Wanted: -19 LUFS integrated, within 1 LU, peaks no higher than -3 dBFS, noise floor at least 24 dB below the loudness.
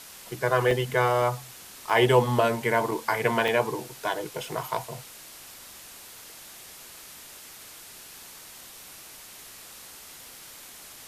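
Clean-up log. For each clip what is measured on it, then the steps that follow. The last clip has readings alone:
dropouts 6; longest dropout 2.5 ms; noise floor -46 dBFS; noise floor target -50 dBFS; loudness -25.5 LUFS; peak level -7.5 dBFS; loudness target -19.0 LUFS
-> interpolate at 0.71/1.22/1.90/2.91/3.48/4.63 s, 2.5 ms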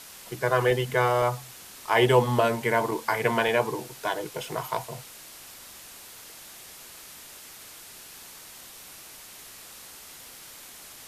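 dropouts 0; noise floor -46 dBFS; noise floor target -50 dBFS
-> noise print and reduce 6 dB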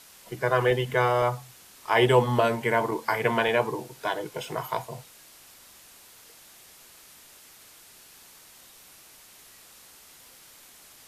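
noise floor -52 dBFS; loudness -25.5 LUFS; peak level -8.0 dBFS; loudness target -19.0 LUFS
-> trim +6.5 dB; peak limiter -3 dBFS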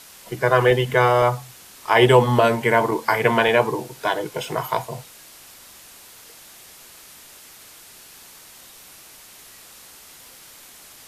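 loudness -19.0 LUFS; peak level -3.0 dBFS; noise floor -46 dBFS

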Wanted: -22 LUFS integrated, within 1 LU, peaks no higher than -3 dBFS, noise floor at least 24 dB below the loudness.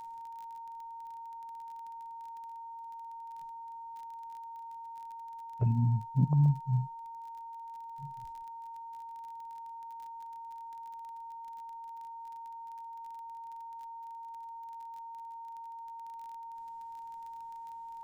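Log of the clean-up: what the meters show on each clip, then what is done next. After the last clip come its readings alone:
tick rate 25 per s; steady tone 920 Hz; tone level -42 dBFS; loudness -39.0 LUFS; peak level -16.0 dBFS; loudness target -22.0 LUFS
-> de-click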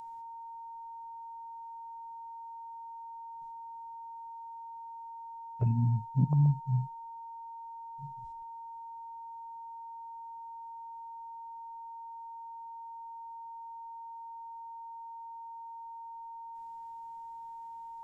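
tick rate 0.055 per s; steady tone 920 Hz; tone level -42 dBFS
-> band-stop 920 Hz, Q 30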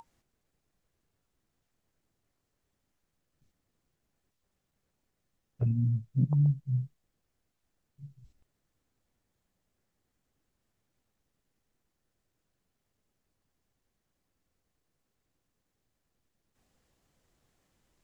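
steady tone not found; loudness -29.5 LUFS; peak level -16.0 dBFS; loudness target -22.0 LUFS
-> trim +7.5 dB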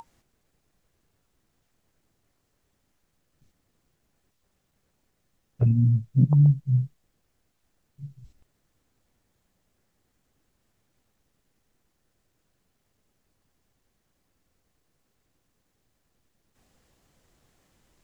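loudness -22.0 LUFS; peak level -8.5 dBFS; noise floor -74 dBFS

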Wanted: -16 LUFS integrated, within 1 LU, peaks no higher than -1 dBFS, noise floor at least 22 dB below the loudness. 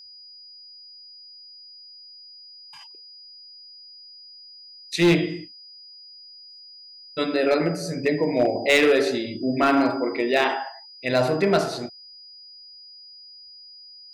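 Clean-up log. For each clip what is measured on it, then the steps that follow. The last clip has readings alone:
clipped samples 0.4%; clipping level -12.0 dBFS; steady tone 4.9 kHz; tone level -43 dBFS; loudness -22.0 LUFS; peak level -12.0 dBFS; loudness target -16.0 LUFS
-> clip repair -12 dBFS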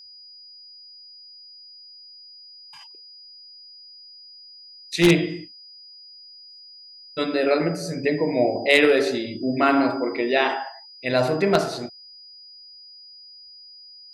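clipped samples 0.0%; steady tone 4.9 kHz; tone level -43 dBFS
-> band-stop 4.9 kHz, Q 30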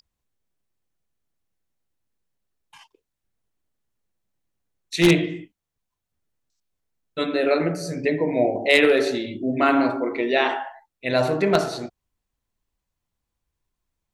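steady tone not found; loudness -21.5 LUFS; peak level -3.0 dBFS; loudness target -16.0 LUFS
-> trim +5.5 dB; peak limiter -1 dBFS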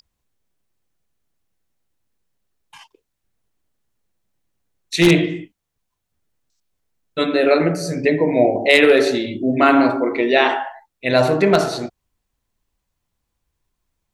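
loudness -16.5 LUFS; peak level -1.0 dBFS; noise floor -78 dBFS

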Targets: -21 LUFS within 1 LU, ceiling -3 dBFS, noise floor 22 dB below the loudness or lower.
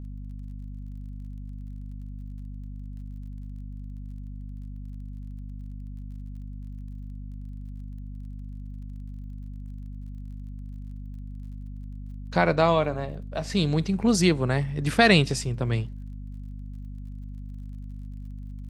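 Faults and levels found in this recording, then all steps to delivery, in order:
tick rate 35 per s; hum 50 Hz; highest harmonic 250 Hz; hum level -35 dBFS; loudness -23.5 LUFS; peak level -4.0 dBFS; loudness target -21.0 LUFS
-> de-click; de-hum 50 Hz, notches 5; trim +2.5 dB; peak limiter -3 dBFS

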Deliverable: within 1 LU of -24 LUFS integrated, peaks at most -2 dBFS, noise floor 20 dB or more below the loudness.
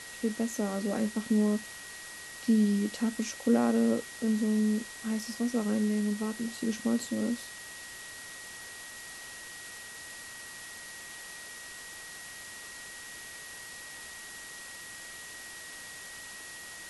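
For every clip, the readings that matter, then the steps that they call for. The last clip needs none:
steady tone 1.9 kHz; tone level -46 dBFS; noise floor -45 dBFS; noise floor target -54 dBFS; loudness -33.5 LUFS; peak level -14.5 dBFS; loudness target -24.0 LUFS
-> band-stop 1.9 kHz, Q 30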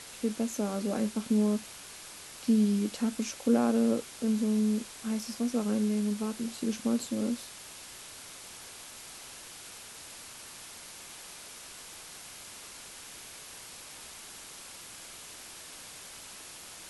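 steady tone not found; noise floor -47 dBFS; noise floor target -50 dBFS
-> noise print and reduce 6 dB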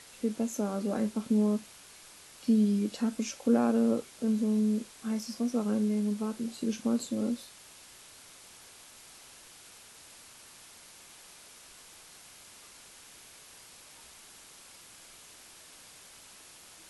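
noise floor -53 dBFS; loudness -30.0 LUFS; peak level -14.5 dBFS; loudness target -24.0 LUFS
-> trim +6 dB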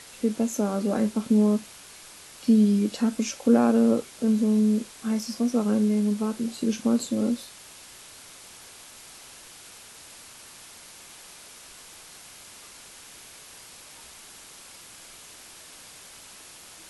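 loudness -24.0 LUFS; peak level -8.5 dBFS; noise floor -47 dBFS

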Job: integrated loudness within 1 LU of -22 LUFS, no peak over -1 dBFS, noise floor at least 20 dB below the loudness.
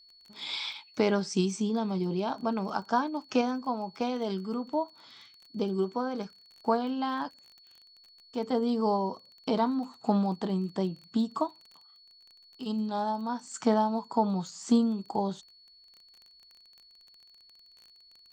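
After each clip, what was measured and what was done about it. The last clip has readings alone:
tick rate 24 per s; steady tone 4.4 kHz; tone level -55 dBFS; loudness -30.5 LUFS; peak level -12.0 dBFS; loudness target -22.0 LUFS
-> de-click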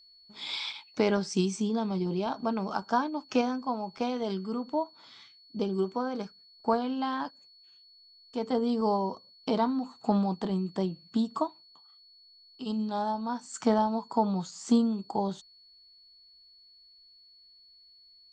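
tick rate 0 per s; steady tone 4.4 kHz; tone level -55 dBFS
-> band-stop 4.4 kHz, Q 30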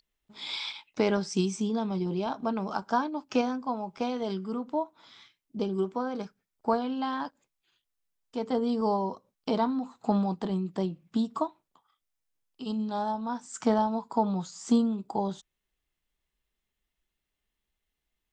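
steady tone not found; loudness -30.5 LUFS; peak level -12.0 dBFS; loudness target -22.0 LUFS
-> trim +8.5 dB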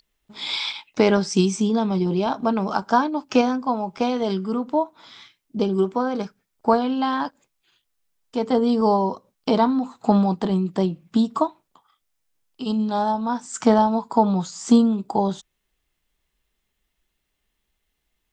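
loudness -22.0 LUFS; peak level -3.5 dBFS; noise floor -76 dBFS

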